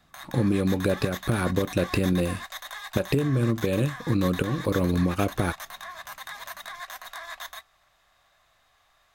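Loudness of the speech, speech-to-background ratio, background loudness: -26.0 LUFS, 12.5 dB, -38.5 LUFS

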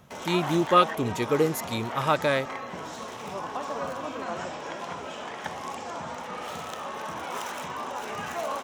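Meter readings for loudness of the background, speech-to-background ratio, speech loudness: -35.0 LUFS, 9.5 dB, -25.5 LUFS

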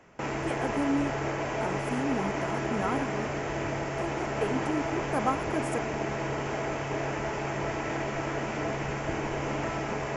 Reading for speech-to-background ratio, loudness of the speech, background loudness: -2.0 dB, -34.0 LUFS, -32.0 LUFS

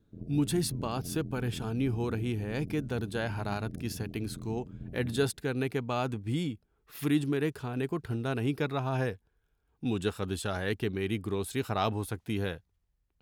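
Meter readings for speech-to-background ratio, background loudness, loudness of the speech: 10.5 dB, -43.5 LUFS, -33.0 LUFS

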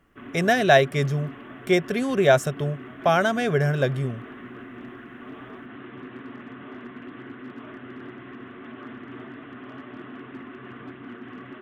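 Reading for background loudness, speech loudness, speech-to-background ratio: -41.0 LUFS, -22.5 LUFS, 18.5 dB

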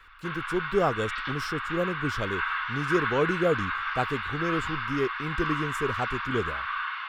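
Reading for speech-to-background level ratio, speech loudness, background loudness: 0.5 dB, -30.5 LUFS, -31.0 LUFS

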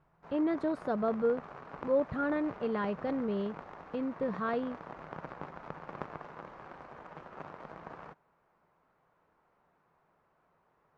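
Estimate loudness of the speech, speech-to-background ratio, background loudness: -33.5 LUFS, 13.5 dB, -47.0 LUFS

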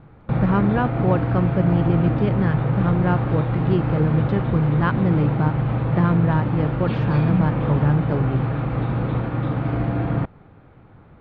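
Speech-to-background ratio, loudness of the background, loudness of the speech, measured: 0.5 dB, -23.0 LUFS, -22.5 LUFS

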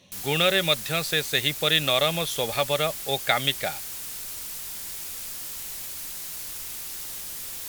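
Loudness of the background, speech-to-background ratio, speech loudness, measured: -32.5 LUFS, 8.5 dB, -24.0 LUFS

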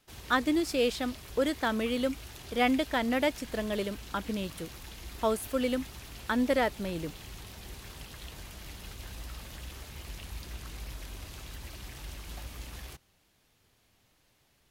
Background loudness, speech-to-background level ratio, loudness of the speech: -45.0 LUFS, 14.5 dB, -30.5 LUFS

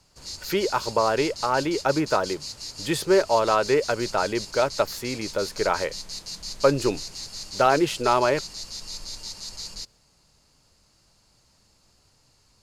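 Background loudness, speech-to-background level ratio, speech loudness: -34.5 LUFS, 10.5 dB, -24.0 LUFS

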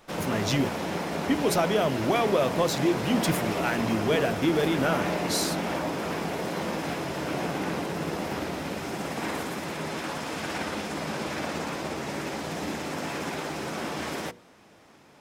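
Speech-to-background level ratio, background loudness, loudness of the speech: 4.0 dB, -31.0 LUFS, -27.0 LUFS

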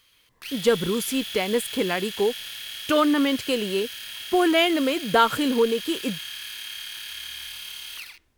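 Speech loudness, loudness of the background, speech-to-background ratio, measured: -23.5 LUFS, -33.5 LUFS, 10.0 dB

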